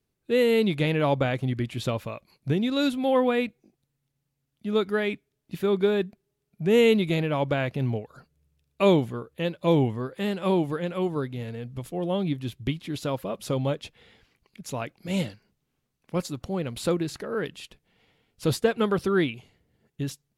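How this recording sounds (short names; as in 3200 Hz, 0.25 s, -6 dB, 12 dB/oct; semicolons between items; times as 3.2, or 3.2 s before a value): noise floor -79 dBFS; spectral tilt -5.5 dB/oct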